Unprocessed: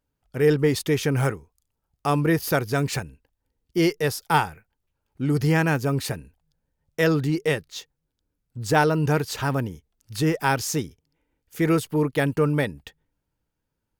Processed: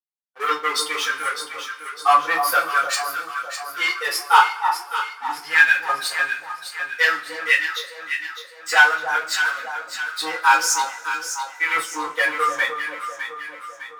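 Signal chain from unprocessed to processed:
spectral dynamics exaggerated over time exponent 2
high-pass filter 180 Hz 24 dB per octave
high-shelf EQ 12,000 Hz −11 dB
leveller curve on the samples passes 3
auto-filter high-pass saw up 0.51 Hz 980–2,000 Hz
delay that swaps between a low-pass and a high-pass 303 ms, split 1,100 Hz, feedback 70%, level −5.5 dB
convolution reverb, pre-delay 3 ms, DRR −8 dB
level −6.5 dB

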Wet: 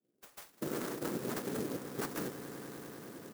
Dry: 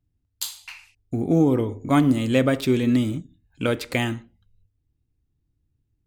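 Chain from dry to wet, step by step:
camcorder AGC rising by 19 dB per second
soft clipping −14 dBFS, distortion −16 dB
low-pass filter 1,400 Hz 12 dB per octave
double-tracking delay 12 ms −4 dB
cochlear-implant simulation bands 3
high-pass filter 210 Hz 12 dB per octave
downward compressor 6 to 1, threshold −29 dBFS, peak gain reduction 15 dB
phase-vocoder stretch with locked phases 0.55×
echo that builds up and dies away 100 ms, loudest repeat 5, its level −14.5 dB
converter with an unsteady clock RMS 0.09 ms
level −4 dB

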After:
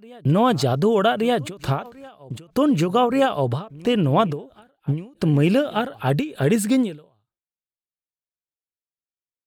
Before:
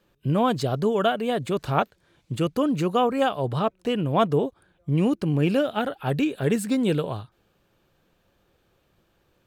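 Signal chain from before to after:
noise gate −52 dBFS, range −51 dB
in parallel at +1 dB: brickwall limiter −19 dBFS, peak gain reduction 11 dB
on the sum: backwards echo 1,176 ms −23 dB
every ending faded ahead of time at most 150 dB per second

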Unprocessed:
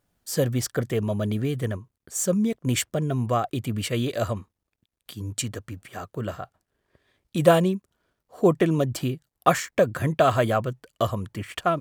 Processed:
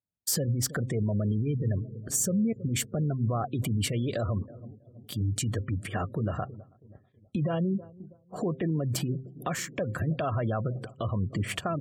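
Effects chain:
downward compressor 8 to 1, threshold −30 dBFS, peak gain reduction 19 dB
low-shelf EQ 200 Hz +11.5 dB
feedback echo with a low-pass in the loop 323 ms, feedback 74%, low-pass 1,100 Hz, level −21.5 dB
brickwall limiter −26 dBFS, peak gain reduction 11 dB
gate on every frequency bin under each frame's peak −30 dB strong
downward expander −43 dBFS
high-pass filter 86 Hz
high-shelf EQ 4,600 Hz +4.5 dB
hum removal 130.9 Hz, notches 4
level +5.5 dB

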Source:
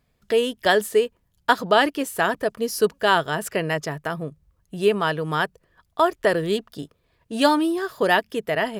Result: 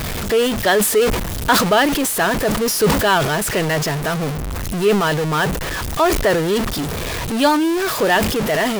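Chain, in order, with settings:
converter with a step at zero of −18 dBFS
level that may fall only so fast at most 47 dB per second

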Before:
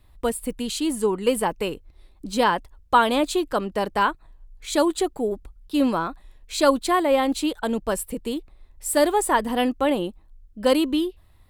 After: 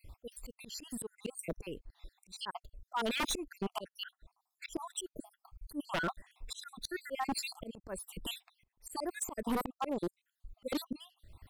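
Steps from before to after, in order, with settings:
time-frequency cells dropped at random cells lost 65%
volume swells 531 ms
wave folding −30.5 dBFS
level +4 dB

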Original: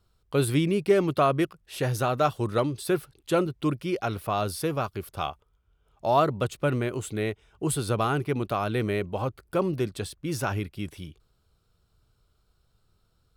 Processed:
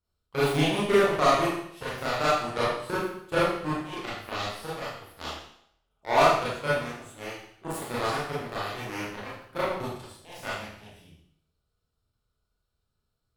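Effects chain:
harmonic generator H 5 −30 dB, 7 −14 dB, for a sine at −9 dBFS
four-comb reverb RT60 0.69 s, combs from 26 ms, DRR −9 dB
level −7 dB

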